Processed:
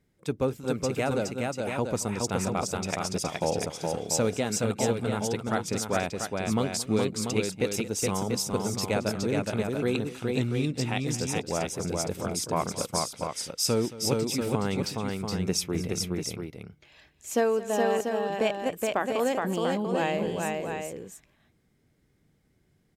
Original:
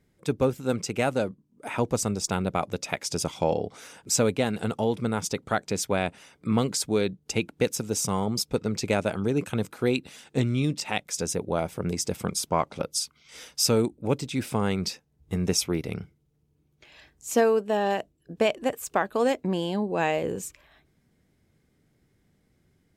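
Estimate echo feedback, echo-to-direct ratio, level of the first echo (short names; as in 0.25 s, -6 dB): no steady repeat, -1.5 dB, -17.0 dB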